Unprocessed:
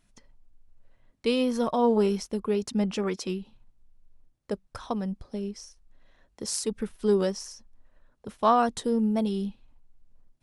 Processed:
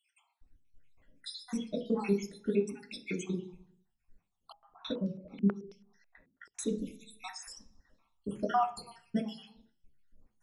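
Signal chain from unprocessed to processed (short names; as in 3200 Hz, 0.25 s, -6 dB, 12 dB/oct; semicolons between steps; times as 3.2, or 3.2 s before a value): random spectral dropouts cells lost 76%; compressor 1.5:1, threshold -37 dBFS, peak gain reduction 6.5 dB; reverb RT60 0.50 s, pre-delay 3 ms, DRR 0 dB; 4.52–6.59 stepped low-pass 9.2 Hz 260–5300 Hz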